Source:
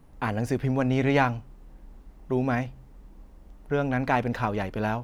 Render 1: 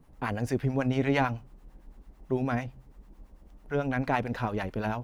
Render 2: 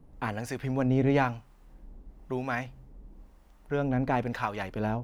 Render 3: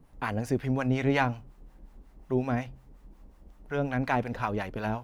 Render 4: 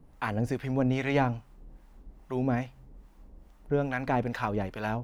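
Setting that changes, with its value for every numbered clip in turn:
two-band tremolo in antiphase, speed: 9, 1, 5.5, 2.4 Hertz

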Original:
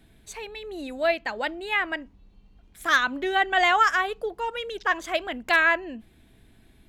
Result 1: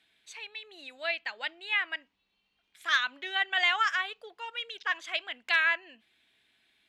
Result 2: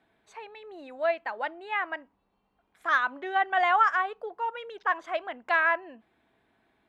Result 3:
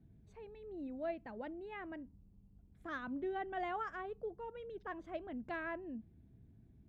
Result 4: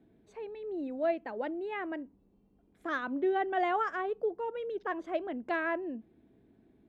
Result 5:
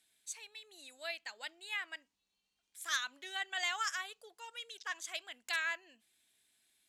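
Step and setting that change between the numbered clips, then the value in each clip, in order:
resonant band-pass, frequency: 3,000, 980, 120, 340, 7,800 Hertz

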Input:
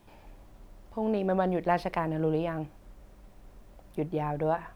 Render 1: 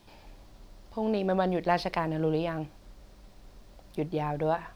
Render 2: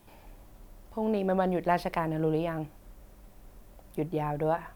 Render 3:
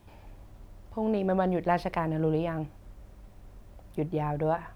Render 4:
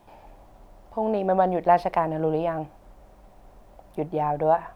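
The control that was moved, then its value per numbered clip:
parametric band, centre frequency: 4,500, 15,000, 80, 750 Hertz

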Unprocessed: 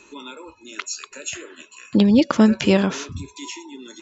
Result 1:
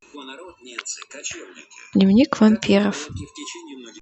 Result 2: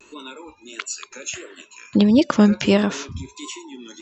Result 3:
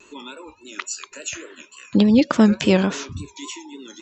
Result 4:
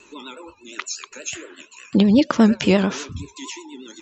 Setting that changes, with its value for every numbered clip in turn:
pitch vibrato, speed: 0.4, 1.5, 3.5, 8.4 Hertz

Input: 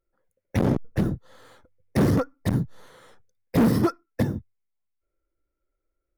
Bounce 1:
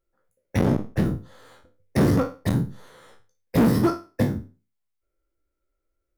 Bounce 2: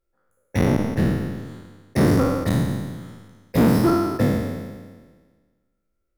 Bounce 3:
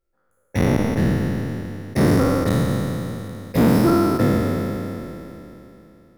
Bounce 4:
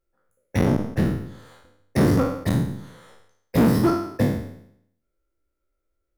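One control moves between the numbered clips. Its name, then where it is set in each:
peak hold with a decay on every bin, RT60: 0.32, 1.51, 3.18, 0.71 seconds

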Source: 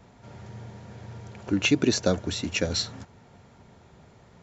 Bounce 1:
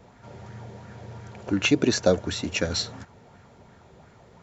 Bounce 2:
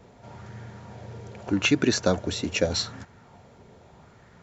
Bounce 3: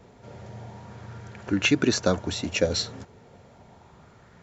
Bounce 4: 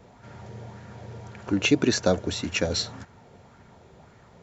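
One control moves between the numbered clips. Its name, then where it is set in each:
auto-filter bell, speed: 2.8, 0.82, 0.33, 1.8 Hertz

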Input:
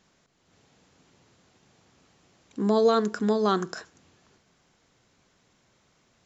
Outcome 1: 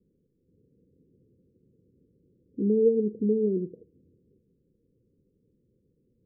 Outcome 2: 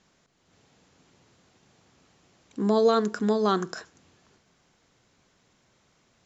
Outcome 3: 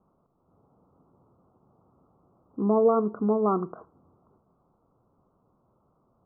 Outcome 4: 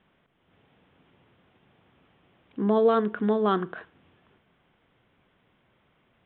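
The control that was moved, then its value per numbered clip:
Butterworth low-pass, frequency: 510, 9,800, 1,300, 3,500 Hertz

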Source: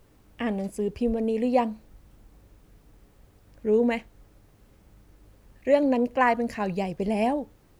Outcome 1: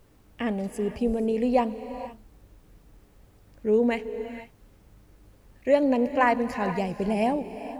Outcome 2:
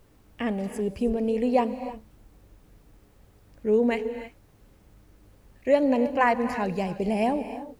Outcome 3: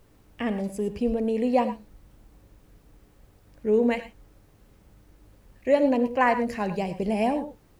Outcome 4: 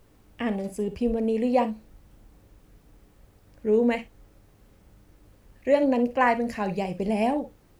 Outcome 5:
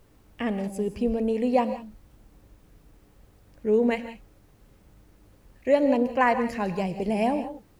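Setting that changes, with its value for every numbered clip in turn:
reverb whose tail is shaped and stops, gate: 510, 340, 130, 80, 200 milliseconds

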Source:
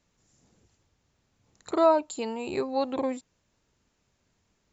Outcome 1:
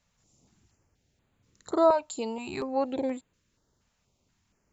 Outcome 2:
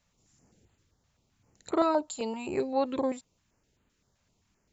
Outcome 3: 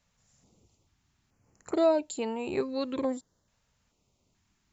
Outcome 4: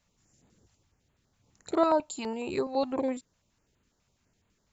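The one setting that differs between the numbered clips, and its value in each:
notch on a step sequencer, speed: 4.2, 7.7, 2.3, 12 Hertz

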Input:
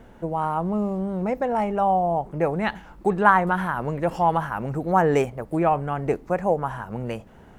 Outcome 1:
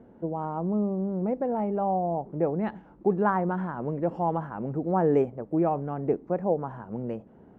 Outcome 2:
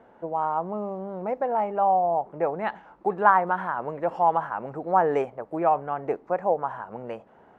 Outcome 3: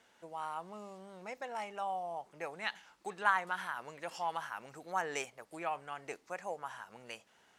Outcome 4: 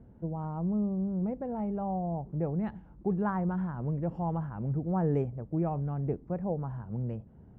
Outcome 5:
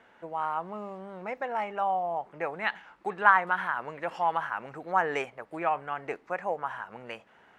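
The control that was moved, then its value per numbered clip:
resonant band-pass, frequency: 290, 780, 5,500, 110, 2,000 Hertz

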